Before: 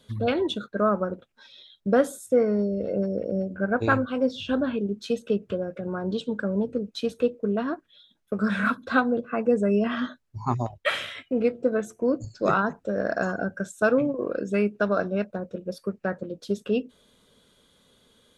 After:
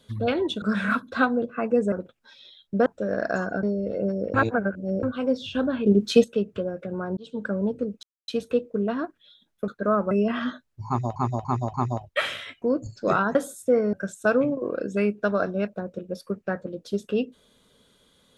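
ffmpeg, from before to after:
-filter_complex "[0:a]asplit=19[a][b][c][d][e][f][g][h][i][j][k][l][m][n][o][p][q][r][s];[a]atrim=end=0.622[t];[b]atrim=start=8.368:end=9.672[u];[c]atrim=start=1.048:end=1.992[v];[d]atrim=start=12.728:end=13.502[w];[e]atrim=start=2.568:end=3.282[x];[f]atrim=start=3.278:end=3.972,asetpts=PTS-STARTPTS,areverse[y];[g]atrim=start=3.968:end=4.802[z];[h]atrim=start=4.798:end=5.182,asetpts=PTS-STARTPTS,volume=10dB[aa];[i]atrim=start=5.178:end=6.11,asetpts=PTS-STARTPTS,afade=t=out:st=0.928:d=0.004:c=hsin[ab];[j]atrim=start=6.11:end=6.97,asetpts=PTS-STARTPTS,afade=t=in:d=0.28,afade=t=out:st=0.856:d=0.004:c=hsin,apad=pad_dur=0.25[ac];[k]atrim=start=6.97:end=8.372,asetpts=PTS-STARTPTS,afade=t=in:d=0.004:c=hsin[ad];[l]atrim=start=0.618:end=1.052[ae];[m]atrim=start=9.668:end=10.722[af];[n]atrim=start=10.428:end=10.722[ag];[o]atrim=start=10.428:end=10.722[ah];[p]atrim=start=10.428:end=11.312[ai];[q]atrim=start=11.998:end=12.732[aj];[r]atrim=start=1.988:end=2.572[ak];[s]atrim=start=13.498[al];[t][u]acrossfade=d=0.004:c1=hsin:c2=hsin[am];[am][v]acrossfade=d=0.004:c1=hsin:c2=hsin[an];[an][w]acrossfade=d=0.004:c1=hsin:c2=hsin[ao];[ao][x]acrossfade=d=0.004:c1=hsin:c2=hsin[ap];[ap][y]acrossfade=d=0.004:c1=hsin:c2=hsin[aq];[aq][z]acrossfade=d=0.004:c1=hsin:c2=hsin[ar];[ar][aa]acrossfade=d=0.004:c1=hsin:c2=hsin[as];[ab][ac][ad]concat=n=3:v=0:a=1[at];[as][at]acrossfade=d=0.004:c1=hsin:c2=hsin[au];[au][ae]acrossfade=d=0.004:c1=hsin:c2=hsin[av];[av][af]acrossfade=d=0.004:c1=hsin:c2=hsin[aw];[aw][ag]acrossfade=d=0.004:c1=hsin:c2=hsin[ax];[ax][ah]acrossfade=d=0.004:c1=hsin:c2=hsin[ay];[ay][ai]acrossfade=d=0.004:c1=hsin:c2=hsin[az];[az][aj]acrossfade=d=0.004:c1=hsin:c2=hsin[ba];[ba][ak]acrossfade=d=0.004:c1=hsin:c2=hsin[bb];[bb][al]acrossfade=d=0.004:c1=hsin:c2=hsin"

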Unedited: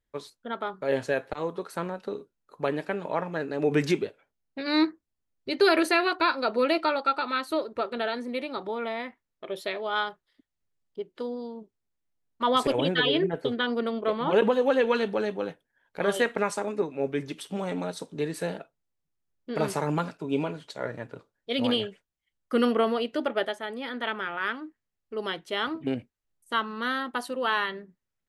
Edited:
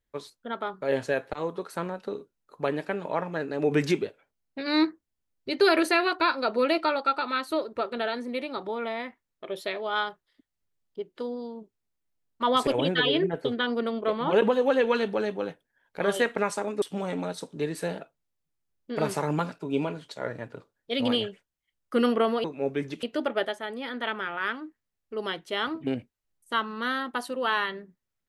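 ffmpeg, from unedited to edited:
-filter_complex "[0:a]asplit=4[a][b][c][d];[a]atrim=end=16.822[e];[b]atrim=start=17.408:end=23.032[f];[c]atrim=start=16.818:end=17.412[g];[d]atrim=start=23.028[h];[e][f]acrossfade=d=0.004:c1=hsin:c2=hsin[i];[i][g]acrossfade=d=0.004:c1=hsin:c2=hsin[j];[j][h]acrossfade=d=0.004:c1=hsin:c2=hsin"

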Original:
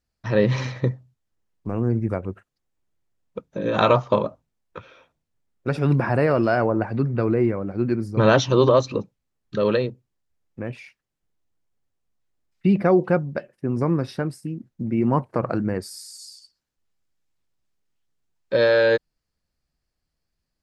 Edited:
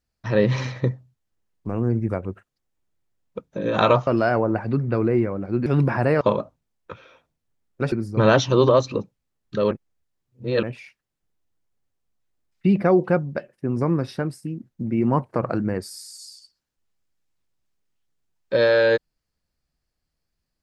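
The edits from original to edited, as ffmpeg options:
-filter_complex "[0:a]asplit=7[a][b][c][d][e][f][g];[a]atrim=end=4.072[h];[b]atrim=start=6.328:end=7.922[i];[c]atrim=start=5.778:end=6.332[j];[d]atrim=start=4.068:end=5.782[k];[e]atrim=start=7.918:end=9.712[l];[f]atrim=start=9.708:end=10.632,asetpts=PTS-STARTPTS,areverse[m];[g]atrim=start=10.628[n];[h][i]acrossfade=d=0.004:c1=hsin:c2=hsin[o];[o][j]acrossfade=d=0.004:c1=hsin:c2=hsin[p];[p][k]acrossfade=d=0.004:c1=hsin:c2=hsin[q];[q][l]acrossfade=d=0.004:c1=hsin:c2=hsin[r];[r][m]acrossfade=d=0.004:c1=hsin:c2=hsin[s];[s][n]acrossfade=d=0.004:c1=hsin:c2=hsin"

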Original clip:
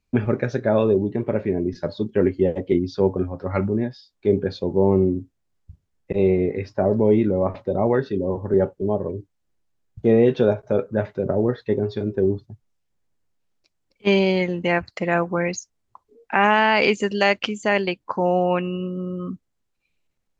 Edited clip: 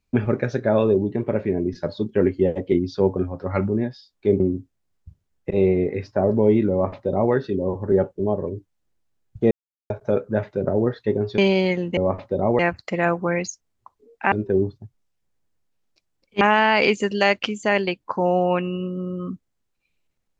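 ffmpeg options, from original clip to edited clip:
-filter_complex "[0:a]asplit=9[a][b][c][d][e][f][g][h][i];[a]atrim=end=4.402[j];[b]atrim=start=5.018:end=10.13,asetpts=PTS-STARTPTS,afade=t=out:st=5.108:d=0.004:c=hsin[k];[c]atrim=start=10.13:end=10.52,asetpts=PTS-STARTPTS,volume=0[l];[d]atrim=start=10.52:end=12.002,asetpts=PTS-STARTPTS,afade=t=in:d=0.004:c=hsin[m];[e]atrim=start=14.088:end=14.682[n];[f]atrim=start=7.328:end=7.952[o];[g]atrim=start=14.678:end=16.412[p];[h]atrim=start=11.998:end=14.092[q];[i]atrim=start=16.408[r];[k][l][m]concat=n=3:v=0:a=1[s];[j][s]acrossfade=d=0.004:c1=hsin:c2=hsin[t];[t][n]acrossfade=d=0.004:c1=hsin:c2=hsin[u];[u][o]acrossfade=d=0.004:c1=hsin:c2=hsin[v];[v][p]acrossfade=d=0.004:c1=hsin:c2=hsin[w];[w][q]acrossfade=d=0.004:c1=hsin:c2=hsin[x];[x][r]acrossfade=d=0.004:c1=hsin:c2=hsin"

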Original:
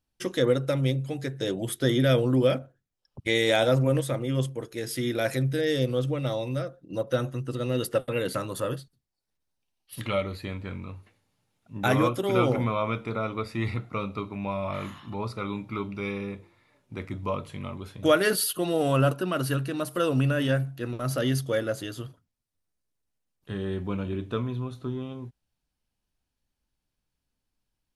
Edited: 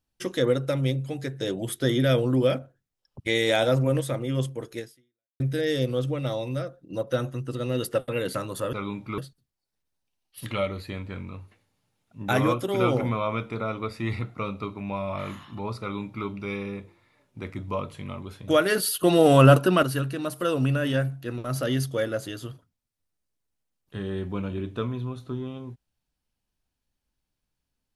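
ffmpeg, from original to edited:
-filter_complex "[0:a]asplit=6[a][b][c][d][e][f];[a]atrim=end=5.4,asetpts=PTS-STARTPTS,afade=t=out:st=4.79:d=0.61:c=exp[g];[b]atrim=start=5.4:end=8.732,asetpts=PTS-STARTPTS,afade=t=in:d=0.004:c=hsin[h];[c]atrim=start=15.358:end=15.812[i];[d]atrim=start=8.728:end=18.582[j];[e]atrim=start=18.578:end=19.382,asetpts=PTS-STARTPTS,volume=8dB[k];[f]atrim=start=19.378[l];[g][h]concat=n=2:v=0:a=1[m];[m][i]acrossfade=d=0.004:c1=hsin:c2=hsin[n];[n][j]acrossfade=d=0.004:c1=hsin:c2=hsin[o];[o][k]acrossfade=d=0.004:c1=hsin:c2=hsin[p];[p][l]acrossfade=d=0.004:c1=hsin:c2=hsin"

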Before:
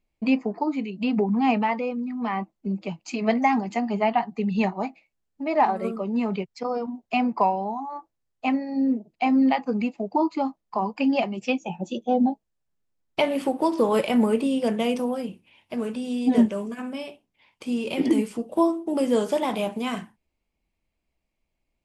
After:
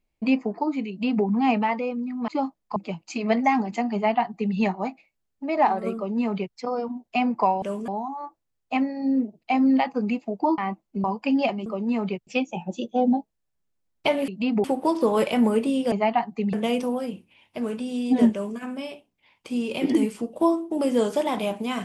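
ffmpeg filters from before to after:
-filter_complex "[0:a]asplit=13[a][b][c][d][e][f][g][h][i][j][k][l][m];[a]atrim=end=2.282[n];[b]atrim=start=10.298:end=10.782[o];[c]atrim=start=2.738:end=7.602[p];[d]atrim=start=16.478:end=16.742[q];[e]atrim=start=7.598:end=10.302[r];[f]atrim=start=2.278:end=2.742[s];[g]atrim=start=10.778:end=11.402[t];[h]atrim=start=5.928:end=6.542[u];[i]atrim=start=11.398:end=13.412[v];[j]atrim=start=0.888:end=1.252[w];[k]atrim=start=13.408:end=14.692[x];[l]atrim=start=3.918:end=4.532[y];[m]atrim=start=14.688[z];[n][o]acrossfade=d=0.004:c1=hsin:c2=hsin[aa];[aa][p]acrossfade=d=0.004:c1=hsin:c2=hsin[ab];[ab][q]acrossfade=d=0.004:c1=hsin:c2=hsin[ac];[ac][r]acrossfade=d=0.004:c1=hsin:c2=hsin[ad];[ad][s]acrossfade=d=0.004:c1=hsin:c2=hsin[ae];[ae][t]acrossfade=d=0.004:c1=hsin:c2=hsin[af];[af][u]acrossfade=d=0.004:c1=hsin:c2=hsin[ag];[ag][v]acrossfade=d=0.004:c1=hsin:c2=hsin[ah];[ah][w]acrossfade=d=0.004:c1=hsin:c2=hsin[ai];[ai][x]acrossfade=d=0.004:c1=hsin:c2=hsin[aj];[aj][y]acrossfade=d=0.004:c1=hsin:c2=hsin[ak];[ak][z]acrossfade=d=0.004:c1=hsin:c2=hsin"

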